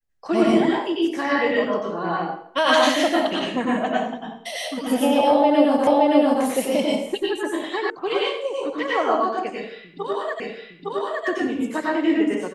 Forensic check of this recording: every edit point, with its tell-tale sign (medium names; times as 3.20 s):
5.87 s: repeat of the last 0.57 s
7.90 s: sound stops dead
10.40 s: repeat of the last 0.86 s